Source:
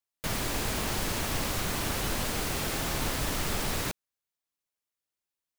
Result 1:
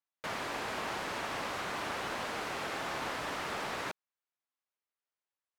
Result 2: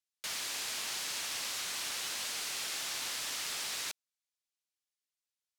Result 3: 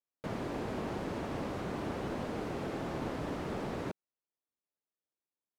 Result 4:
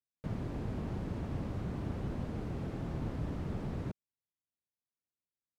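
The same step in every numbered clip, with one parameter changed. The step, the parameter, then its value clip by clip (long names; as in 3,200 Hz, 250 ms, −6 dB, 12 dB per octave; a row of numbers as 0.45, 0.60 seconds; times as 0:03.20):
resonant band-pass, frequency: 1,100, 5,100, 350, 130 Hertz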